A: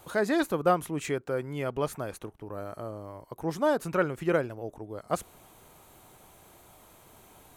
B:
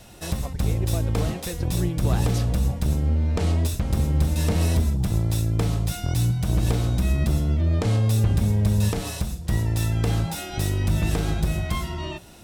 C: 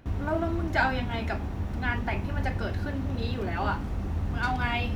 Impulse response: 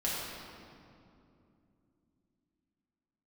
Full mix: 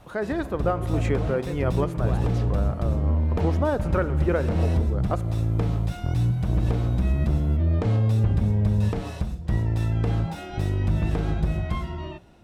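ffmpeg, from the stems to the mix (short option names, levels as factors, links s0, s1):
-filter_complex "[0:a]highshelf=f=5100:g=-7.5,volume=1.06,asplit=2[s0][s1];[s1]volume=0.0668[s2];[1:a]lowpass=f=2600:p=1,volume=0.562[s3];[s0][s3]amix=inputs=2:normalize=0,alimiter=limit=0.133:level=0:latency=1:release=278,volume=1[s4];[3:a]atrim=start_sample=2205[s5];[s2][s5]afir=irnorm=-1:irlink=0[s6];[s4][s6]amix=inputs=2:normalize=0,highshelf=f=3400:g=-7.5,dynaudnorm=f=160:g=7:m=1.68"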